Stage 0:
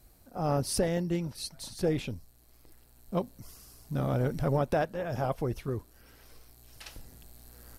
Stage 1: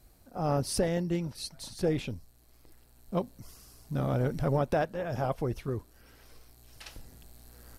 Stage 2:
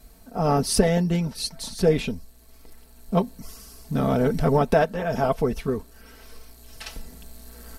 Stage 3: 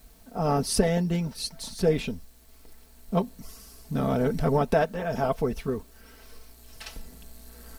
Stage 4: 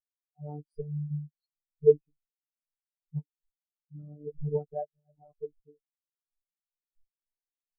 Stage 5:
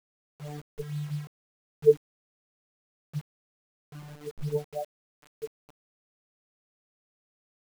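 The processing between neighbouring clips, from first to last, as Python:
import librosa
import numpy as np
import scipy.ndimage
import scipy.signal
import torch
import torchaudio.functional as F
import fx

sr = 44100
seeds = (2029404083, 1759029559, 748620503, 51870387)

y1 = fx.high_shelf(x, sr, hz=12000.0, db=-5.5)
y2 = y1 + 0.68 * np.pad(y1, (int(4.5 * sr / 1000.0), 0))[:len(y1)]
y2 = y2 * librosa.db_to_amplitude(7.5)
y3 = fx.quant_dither(y2, sr, seeds[0], bits=10, dither='triangular')
y3 = y3 * librosa.db_to_amplitude(-3.5)
y4 = fx.robotise(y3, sr, hz=148.0)
y4 = fx.spectral_expand(y4, sr, expansion=4.0)
y5 = fx.quant_dither(y4, sr, seeds[1], bits=8, dither='none')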